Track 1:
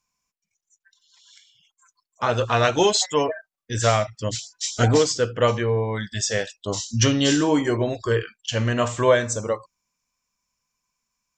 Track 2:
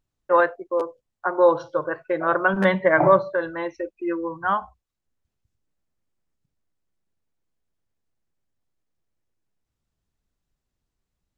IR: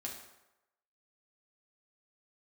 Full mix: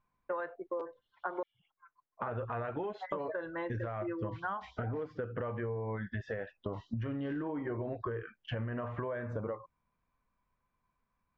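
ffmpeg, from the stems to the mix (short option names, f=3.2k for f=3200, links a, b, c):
-filter_complex "[0:a]lowpass=f=1.8k:w=0.5412,lowpass=f=1.8k:w=1.3066,acompressor=threshold=-28dB:ratio=4,alimiter=limit=-24dB:level=0:latency=1:release=12,volume=2dB[a];[1:a]lowpass=3.6k,acompressor=threshold=-17dB:ratio=6,volume=-5.5dB,asplit=3[b][c][d];[b]atrim=end=1.43,asetpts=PTS-STARTPTS,afade=t=out:st=1.426:d=0.004:c=hsin[e];[c]atrim=start=1.43:end=3.12,asetpts=PTS-STARTPTS,volume=0[f];[d]atrim=start=3.12,asetpts=PTS-STARTPTS,afade=t=in:d=0.004:c=hsin[g];[e][f][g]concat=n=3:v=0:a=1[h];[a][h]amix=inputs=2:normalize=0,acompressor=threshold=-34dB:ratio=6"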